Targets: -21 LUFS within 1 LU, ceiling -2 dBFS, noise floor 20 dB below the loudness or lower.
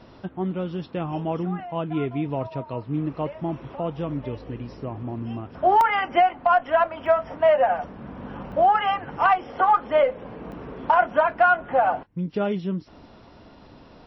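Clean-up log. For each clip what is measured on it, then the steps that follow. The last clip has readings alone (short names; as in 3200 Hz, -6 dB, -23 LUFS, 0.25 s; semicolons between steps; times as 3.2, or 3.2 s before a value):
dropouts 4; longest dropout 1.2 ms; loudness -23.5 LUFS; peak -6.0 dBFS; loudness target -21.0 LUFS
-> interpolate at 5.81/7.06/8.52/10.52, 1.2 ms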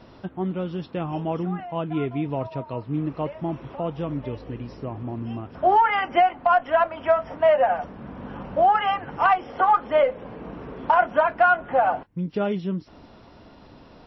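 dropouts 0; loudness -23.5 LUFS; peak -6.0 dBFS; loudness target -21.0 LUFS
-> gain +2.5 dB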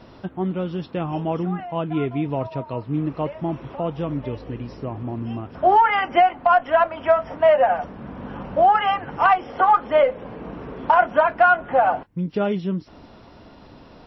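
loudness -21.0 LUFS; peak -3.5 dBFS; noise floor -46 dBFS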